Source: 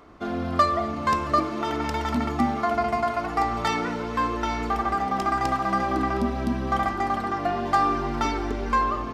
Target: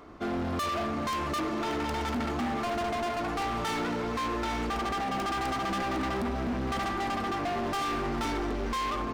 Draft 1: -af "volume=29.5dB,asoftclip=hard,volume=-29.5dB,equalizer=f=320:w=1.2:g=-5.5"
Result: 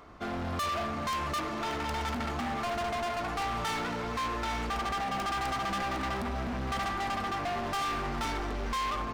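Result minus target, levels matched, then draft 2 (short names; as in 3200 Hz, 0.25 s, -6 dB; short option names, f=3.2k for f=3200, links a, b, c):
250 Hz band -4.0 dB
-af "volume=29.5dB,asoftclip=hard,volume=-29.5dB,equalizer=f=320:w=1.2:g=2"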